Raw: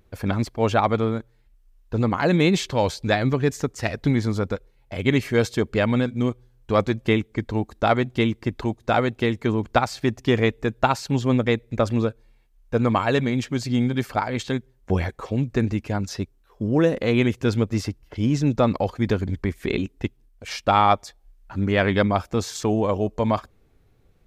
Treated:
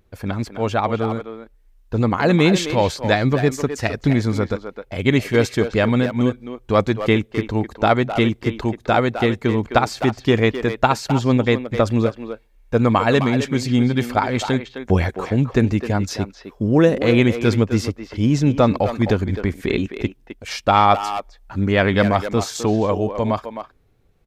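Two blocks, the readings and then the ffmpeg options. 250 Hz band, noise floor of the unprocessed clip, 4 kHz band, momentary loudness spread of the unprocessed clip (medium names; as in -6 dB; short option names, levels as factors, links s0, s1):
+4.0 dB, -59 dBFS, +4.0 dB, 8 LU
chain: -filter_complex "[0:a]dynaudnorm=f=130:g=21:m=2.99,asplit=2[s0][s1];[s1]adelay=260,highpass=300,lowpass=3400,asoftclip=type=hard:threshold=0.335,volume=0.398[s2];[s0][s2]amix=inputs=2:normalize=0,volume=0.891"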